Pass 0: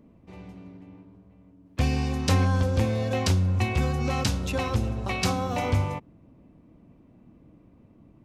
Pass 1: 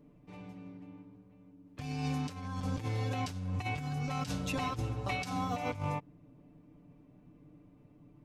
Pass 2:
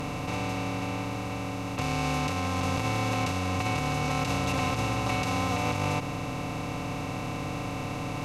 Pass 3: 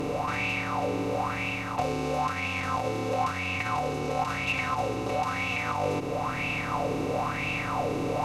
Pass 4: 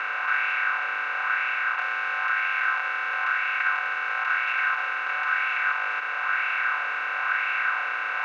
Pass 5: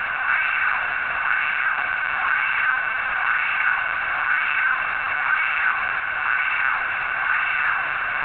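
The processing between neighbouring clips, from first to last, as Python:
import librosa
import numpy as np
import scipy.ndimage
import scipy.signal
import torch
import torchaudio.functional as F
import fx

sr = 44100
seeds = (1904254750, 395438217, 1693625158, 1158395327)

y1 = x + 0.82 * np.pad(x, (int(6.8 * sr / 1000.0), 0))[:len(x)]
y1 = fx.over_compress(y1, sr, threshold_db=-26.0, ratio=-0.5)
y1 = y1 * 10.0 ** (-8.5 / 20.0)
y2 = fx.bin_compress(y1, sr, power=0.2)
y3 = fx.rider(y2, sr, range_db=10, speed_s=0.5)
y3 = fx.bell_lfo(y3, sr, hz=1.0, low_hz=370.0, high_hz=2600.0, db=17)
y3 = y3 * 10.0 ** (-5.0 / 20.0)
y4 = fx.bin_compress(y3, sr, power=0.4)
y4 = fx.ladder_bandpass(y4, sr, hz=1600.0, resonance_pct=85)
y4 = y4 * 10.0 ** (8.5 / 20.0)
y5 = fx.lpc_vocoder(y4, sr, seeds[0], excitation='pitch_kept', order=16)
y5 = y5 * 10.0 ** (4.0 / 20.0)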